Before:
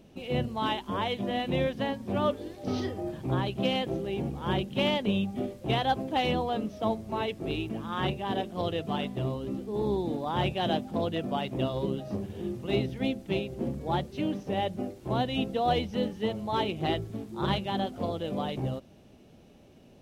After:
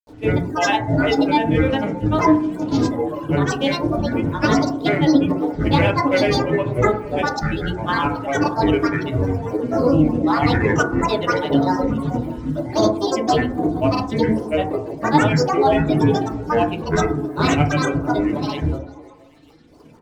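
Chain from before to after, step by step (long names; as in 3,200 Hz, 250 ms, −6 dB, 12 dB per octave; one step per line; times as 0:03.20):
reverb reduction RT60 2 s
granular cloud, grains 20 per second, pitch spread up and down by 12 semitones
in parallel at −2 dB: output level in coarse steps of 12 dB
on the sum: echo through a band-pass that steps 156 ms, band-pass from 260 Hz, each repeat 0.7 octaves, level −10 dB
feedback delay network reverb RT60 0.48 s, low-frequency decay 1.2×, high-frequency decay 0.25×, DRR 0.5 dB
level +7 dB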